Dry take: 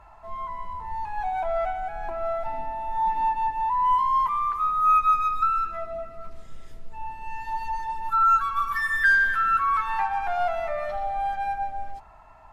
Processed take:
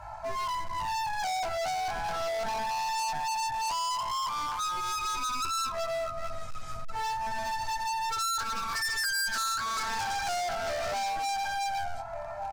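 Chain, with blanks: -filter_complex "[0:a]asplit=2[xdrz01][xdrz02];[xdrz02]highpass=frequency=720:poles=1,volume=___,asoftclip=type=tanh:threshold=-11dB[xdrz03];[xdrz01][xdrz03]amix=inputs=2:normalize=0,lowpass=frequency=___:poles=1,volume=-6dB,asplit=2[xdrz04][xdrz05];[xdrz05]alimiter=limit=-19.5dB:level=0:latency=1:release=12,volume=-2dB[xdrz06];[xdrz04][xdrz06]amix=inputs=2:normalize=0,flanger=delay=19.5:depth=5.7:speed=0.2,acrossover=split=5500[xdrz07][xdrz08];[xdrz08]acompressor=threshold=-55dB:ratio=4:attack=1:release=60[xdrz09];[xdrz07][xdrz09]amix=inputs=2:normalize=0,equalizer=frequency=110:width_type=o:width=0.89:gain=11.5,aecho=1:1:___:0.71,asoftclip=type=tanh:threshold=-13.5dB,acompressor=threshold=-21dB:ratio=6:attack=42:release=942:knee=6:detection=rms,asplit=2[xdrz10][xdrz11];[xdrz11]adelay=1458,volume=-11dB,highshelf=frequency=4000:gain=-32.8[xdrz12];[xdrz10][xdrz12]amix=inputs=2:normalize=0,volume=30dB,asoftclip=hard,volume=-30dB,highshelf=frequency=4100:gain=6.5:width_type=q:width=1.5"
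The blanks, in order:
10dB, 4300, 1.3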